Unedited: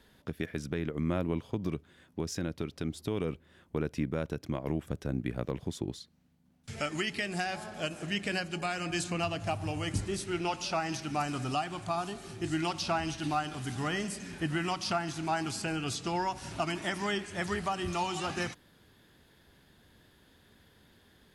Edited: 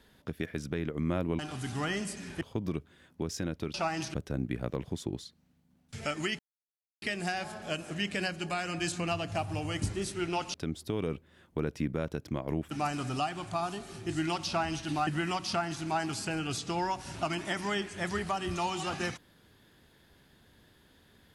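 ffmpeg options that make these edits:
-filter_complex "[0:a]asplit=9[a][b][c][d][e][f][g][h][i];[a]atrim=end=1.392[j];[b]atrim=start=13.418:end=14.442[k];[c]atrim=start=1.388:end=2.722[l];[d]atrim=start=10.658:end=11.062[m];[e]atrim=start=4.888:end=7.14,asetpts=PTS-STARTPTS,afade=t=out:st=2.248:d=0.004:c=hsin,apad=pad_dur=0.63[n];[f]atrim=start=7.14:end=10.662,asetpts=PTS-STARTPTS,afade=t=in:d=0.004:c=hsin[o];[g]atrim=start=2.718:end=4.892[p];[h]atrim=start=11.058:end=13.422[q];[i]atrim=start=14.438[r];[j][k]acrossfade=d=0.004:c1=hsin:c2=hsin[s];[s][l]acrossfade=d=0.004:c1=hsin:c2=hsin[t];[t][m]acrossfade=d=0.004:c1=hsin:c2=hsin[u];[n][o]concat=n=2:v=0:a=1[v];[u][v]acrossfade=d=0.004:c1=hsin:c2=hsin[w];[w][p]acrossfade=d=0.004:c1=hsin:c2=hsin[x];[x][q]acrossfade=d=0.004:c1=hsin:c2=hsin[y];[y][r]acrossfade=d=0.004:c1=hsin:c2=hsin"

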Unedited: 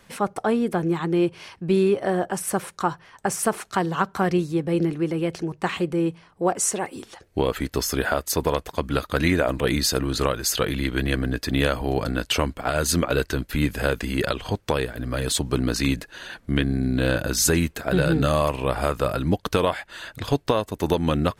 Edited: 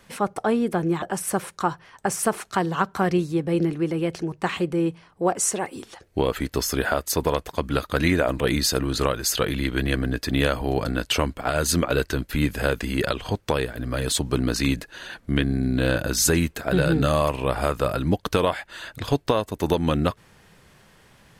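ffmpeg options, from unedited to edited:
-filter_complex "[0:a]asplit=2[a][b];[a]atrim=end=1.022[c];[b]atrim=start=2.218[d];[c][d]acrossfade=d=0.004:c1=hsin:c2=hsin"

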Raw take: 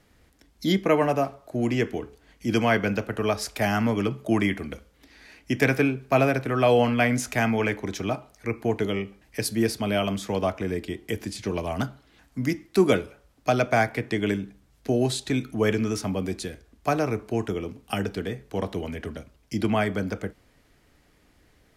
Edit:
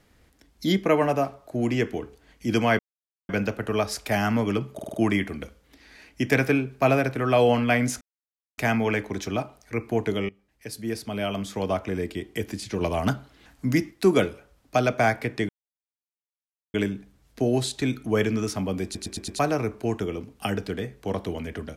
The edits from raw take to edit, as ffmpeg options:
-filter_complex "[0:a]asplit=16[a][b][c][d][e][f][g][h][i][j][k][l][m][n][o][p];[a]atrim=end=2.79,asetpts=PTS-STARTPTS,afade=t=out:st=2.786:d=0.004:c=hsin,apad=pad_dur=0.5[q];[b]atrim=start=2.79:end=4.292,asetpts=PTS-STARTPTS,afade=t=in:d=0.004:c=hsin[r];[c]atrim=start=4.238:end=4.292[s];[d]atrim=start=4.238:end=4.292[t];[e]atrim=start=4.238:end=4.292[u];[f]atrim=start=4.238:end=7.31,asetpts=PTS-STARTPTS,afade=t=out:st=3.068:d=0.004:c=hsin,apad=pad_dur=0.57[v];[g]atrim=start=7.31:end=9.02,asetpts=PTS-STARTPTS,afade=t=in:d=0.004:c=hsin,afade=t=out:st=1.706:d=0.004:c=hsin:silence=0.11885[w];[h]atrim=start=9.02:end=11.542,asetpts=PTS-STARTPTS,afade=t=in:d=1.56:silence=0.11885[x];[i]atrim=start=11.538:end=12.642,asetpts=PTS-STARTPTS,volume=3.5dB[y];[j]atrim=start=12.638:end=14.22,asetpts=PTS-STARTPTS,afade=t=out:st=1.578:d=0.004:c=hsin,apad=pad_dur=1.25[z];[k]atrim=start=14.22:end=16.432,asetpts=PTS-STARTPTS,afade=t=in:d=0.004:c=hsin[aa];[l]atrim=start=16.318:end=16.432[ab];[m]atrim=start=16.318:end=16.432[ac];[n]atrim=start=16.318:end=16.432[ad];[o]atrim=start=16.318:end=16.432[ae];[p]atrim=start=16.868[af];[q][r]concat=n=2:v=0:a=1[ag];[ag][s]acrossfade=d=0.004:c1=hsin:c2=hsin[ah];[ah][t]acrossfade=d=0.004:c1=hsin:c2=hsin[ai];[ai][u]acrossfade=d=0.004:c1=hsin:c2=hsin[aj];[v][w][x]concat=n=3:v=0:a=1[ak];[aj][ak]acrossfade=d=0.004:c1=hsin:c2=hsin[al];[al][y]acrossfade=d=0.004:c1=hsin:c2=hsin[am];[z][aa]concat=n=2:v=0:a=1[an];[am][an]acrossfade=d=0.004:c1=hsin:c2=hsin[ao];[ao][ab]acrossfade=d=0.004:c1=hsin:c2=hsin[ap];[ap][ac]acrossfade=d=0.004:c1=hsin:c2=hsin[aq];[aq][ad]acrossfade=d=0.004:c1=hsin:c2=hsin[ar];[ar][ae]acrossfade=d=0.004:c1=hsin:c2=hsin[as];[as][af]acrossfade=d=0.004:c1=hsin:c2=hsin"

